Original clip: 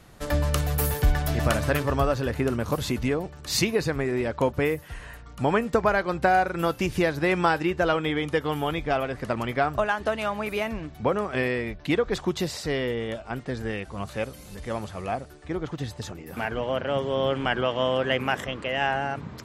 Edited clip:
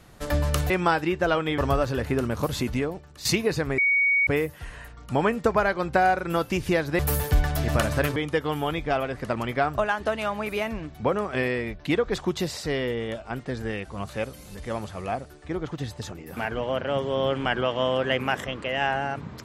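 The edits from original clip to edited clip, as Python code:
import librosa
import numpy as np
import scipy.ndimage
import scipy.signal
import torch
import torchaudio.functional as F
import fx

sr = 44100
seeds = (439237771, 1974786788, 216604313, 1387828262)

y = fx.edit(x, sr, fx.swap(start_s=0.7, length_s=1.17, other_s=7.28, other_length_s=0.88),
    fx.fade_out_to(start_s=3.0, length_s=0.54, floor_db=-11.5),
    fx.bleep(start_s=4.07, length_s=0.49, hz=2240.0, db=-18.0), tone=tone)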